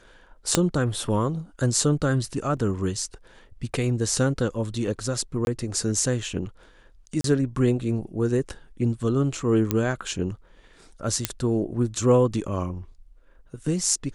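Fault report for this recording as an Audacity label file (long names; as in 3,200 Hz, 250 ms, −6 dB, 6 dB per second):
0.550000	0.550000	click −3 dBFS
2.570000	2.570000	drop-out 2.8 ms
5.450000	5.470000	drop-out 21 ms
7.210000	7.240000	drop-out 33 ms
9.710000	9.710000	click −8 dBFS
11.250000	11.250000	click −4 dBFS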